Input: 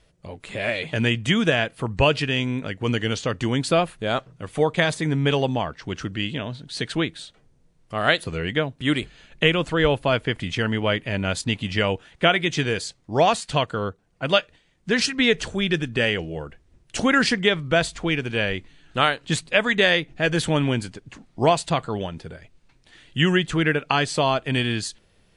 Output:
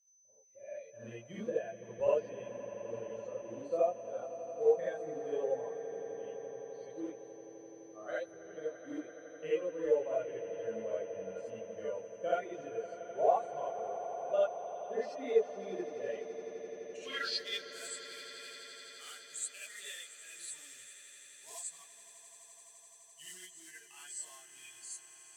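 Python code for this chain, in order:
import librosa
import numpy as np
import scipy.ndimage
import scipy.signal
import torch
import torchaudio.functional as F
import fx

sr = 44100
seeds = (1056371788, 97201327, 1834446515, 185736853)

p1 = fx.bin_expand(x, sr, power=2.0)
p2 = fx.quant_float(p1, sr, bits=2)
p3 = fx.filter_sweep_bandpass(p2, sr, from_hz=550.0, to_hz=7900.0, start_s=15.96, end_s=17.78, q=3.6)
p4 = p3 + 10.0 ** (-65.0 / 20.0) * np.sin(2.0 * np.pi * 6100.0 * np.arange(len(p3)) / sr)
p5 = p4 + fx.echo_swell(p4, sr, ms=85, loudest=8, wet_db=-17.5, dry=0)
p6 = fx.rev_gated(p5, sr, seeds[0], gate_ms=100, shape='rising', drr_db=-8.0)
y = p6 * librosa.db_to_amplitude(-9.0)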